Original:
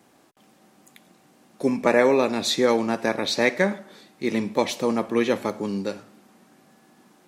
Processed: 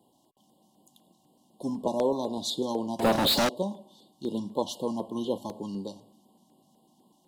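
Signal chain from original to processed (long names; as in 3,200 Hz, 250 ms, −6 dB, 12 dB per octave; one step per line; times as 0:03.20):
brick-wall band-stop 1,100–2,800 Hz
0:02.99–0:03.49: leveller curve on the samples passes 5
auto-filter notch square 4 Hz 450–5,900 Hz
level −6.5 dB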